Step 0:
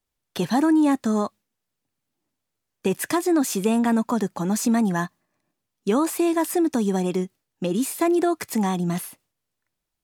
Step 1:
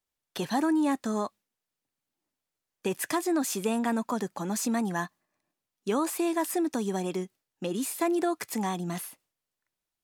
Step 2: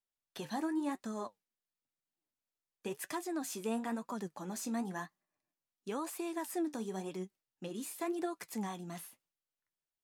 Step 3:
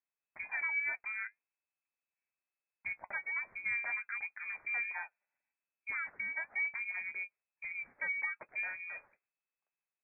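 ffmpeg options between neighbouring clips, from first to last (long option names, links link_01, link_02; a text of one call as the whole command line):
ffmpeg -i in.wav -af "lowshelf=frequency=260:gain=-8,volume=-4dB" out.wav
ffmpeg -i in.wav -af "flanger=delay=5:depth=8.7:regen=57:speed=0.96:shape=sinusoidal,volume=-6dB" out.wav
ffmpeg -i in.wav -af "lowpass=frequency=2200:width_type=q:width=0.5098,lowpass=frequency=2200:width_type=q:width=0.6013,lowpass=frequency=2200:width_type=q:width=0.9,lowpass=frequency=2200:width_type=q:width=2.563,afreqshift=-2600" out.wav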